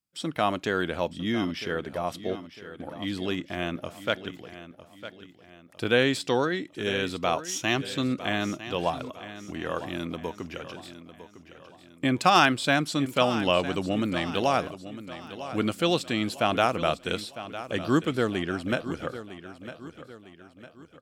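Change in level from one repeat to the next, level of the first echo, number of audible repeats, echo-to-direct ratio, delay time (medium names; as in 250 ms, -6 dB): -7.5 dB, -13.5 dB, 3, -12.5 dB, 954 ms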